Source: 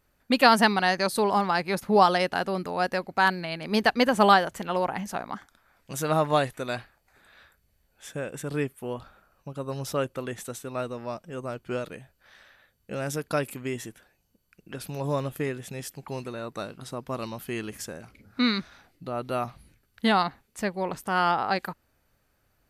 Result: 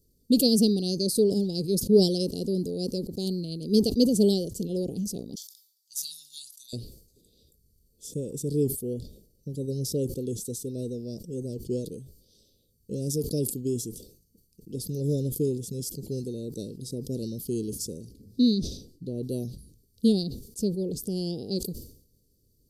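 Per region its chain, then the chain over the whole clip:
5.35–6.73 s: inverse Chebyshev high-pass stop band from 1.2 kHz, stop band 50 dB + peaking EQ 8.3 kHz -3.5 dB 0.29 oct
18.54–19.23 s: treble shelf 7.7 kHz -9 dB + band-stop 1 kHz, Q 18
whole clip: Chebyshev band-stop 460–4700 Hz, order 4; high-order bell 2.1 kHz +11.5 dB; decay stretcher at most 93 dB/s; trim +4 dB

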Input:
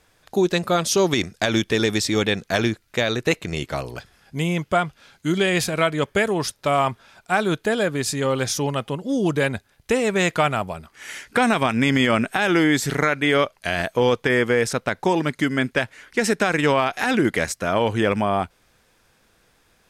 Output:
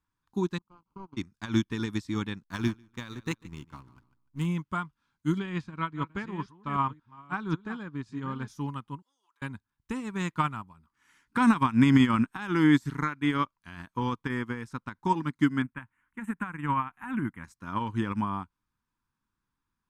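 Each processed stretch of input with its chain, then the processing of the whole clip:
0.58–1.17 s: one-bit delta coder 32 kbps, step -23 dBFS + power-law waveshaper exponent 3 + boxcar filter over 24 samples
2.43–4.46 s: treble shelf 5 kHz +7.5 dB + hysteresis with a dead band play -29 dBFS + feedback delay 147 ms, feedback 23%, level -13 dB
5.39–8.48 s: chunks repeated in reverse 536 ms, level -9 dB + distance through air 120 m
9.02–9.42 s: high-pass 840 Hz 24 dB/octave + compression 16:1, threshold -43 dBFS
15.62–17.44 s: Butterworth band-stop 4.9 kHz, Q 0.78 + peaking EQ 410 Hz -9.5 dB 0.91 oct
whole clip: FFT filter 290 Hz 0 dB, 440 Hz -15 dB, 660 Hz -22 dB, 970 Hz +3 dB, 2 kHz -10 dB; upward expansion 2.5:1, over -33 dBFS; trim +2.5 dB

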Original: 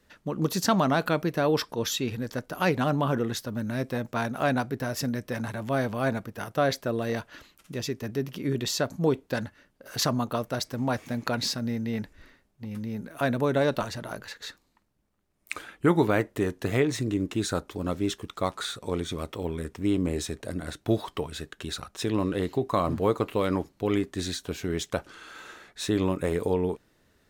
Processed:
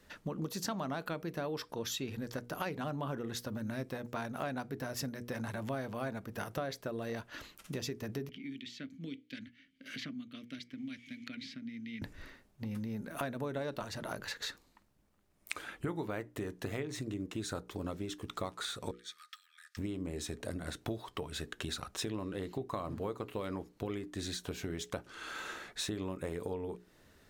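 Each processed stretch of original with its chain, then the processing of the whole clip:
8.29–12.02 s: vowel filter i + peaking EQ 380 Hz -12.5 dB 1.9 oct + three bands compressed up and down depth 100%
18.91–19.77 s: compression 3:1, threshold -39 dBFS + rippled Chebyshev high-pass 1.2 kHz, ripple 9 dB
whole clip: compression 6:1, threshold -38 dBFS; hum notches 60/120/180/240/300/360/420/480 Hz; trim +2.5 dB

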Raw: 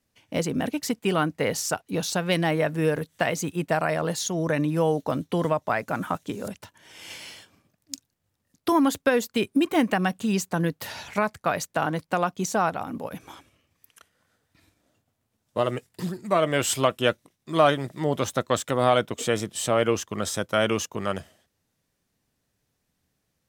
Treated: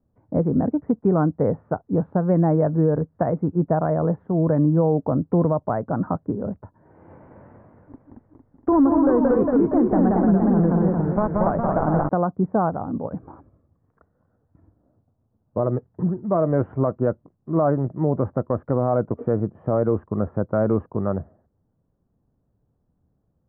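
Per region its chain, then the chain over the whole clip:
7.13–12.09 s: block-companded coder 3-bit + delay 179 ms -3.5 dB + modulated delay 231 ms, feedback 50%, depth 192 cents, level -3.5 dB
whole clip: Bessel low-pass 740 Hz, order 8; bass shelf 180 Hz +6.5 dB; peak limiter -15 dBFS; trim +5 dB

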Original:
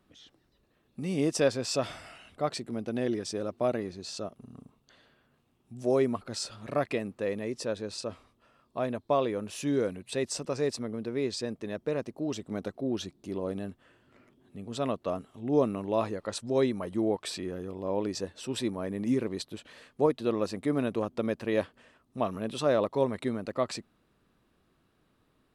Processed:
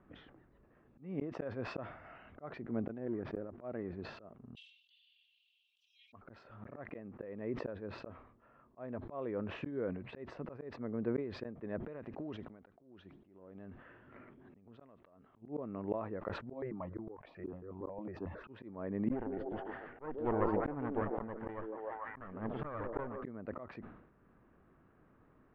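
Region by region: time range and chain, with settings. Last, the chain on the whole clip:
2.98–3.58 s: companding laws mixed up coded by A + tape spacing loss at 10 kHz 30 dB
4.55–6.13 s: steep high-pass 2.9 kHz 72 dB/octave + comb 3.7 ms, depth 93% + level flattener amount 70%
11.83–15.42 s: treble shelf 2.4 kHz +9.5 dB + compression 10:1, threshold -43 dBFS + feedback echo behind a high-pass 71 ms, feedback 66%, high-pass 2.6 kHz, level -19 dB
16.53–18.49 s: treble shelf 5.3 kHz -12 dB + stepped phaser 11 Hz 420–1900 Hz
19.11–23.24 s: comb filter that takes the minimum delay 0.63 ms + distance through air 100 m + repeats whose band climbs or falls 147 ms, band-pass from 370 Hz, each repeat 0.7 oct, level -4 dB
whole clip: low-pass 1.9 kHz 24 dB/octave; slow attack 752 ms; decay stretcher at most 70 dB/s; trim +4 dB

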